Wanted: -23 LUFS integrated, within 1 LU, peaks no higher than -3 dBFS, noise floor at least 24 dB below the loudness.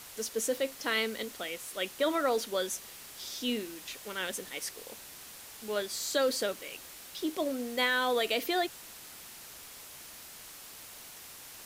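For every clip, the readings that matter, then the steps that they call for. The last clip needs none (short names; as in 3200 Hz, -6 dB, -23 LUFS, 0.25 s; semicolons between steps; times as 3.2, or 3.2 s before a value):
noise floor -49 dBFS; noise floor target -57 dBFS; loudness -32.5 LUFS; peak -15.0 dBFS; loudness target -23.0 LUFS
-> denoiser 8 dB, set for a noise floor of -49 dBFS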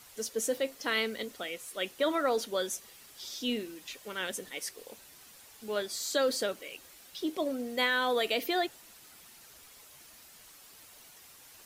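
noise floor -55 dBFS; noise floor target -57 dBFS
-> denoiser 6 dB, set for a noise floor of -55 dBFS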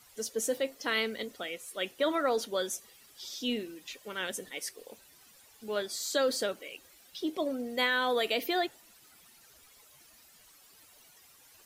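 noise floor -59 dBFS; loudness -32.5 LUFS; peak -15.0 dBFS; loudness target -23.0 LUFS
-> gain +9.5 dB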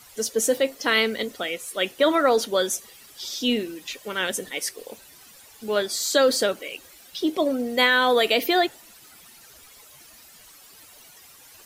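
loudness -23.0 LUFS; peak -5.5 dBFS; noise floor -50 dBFS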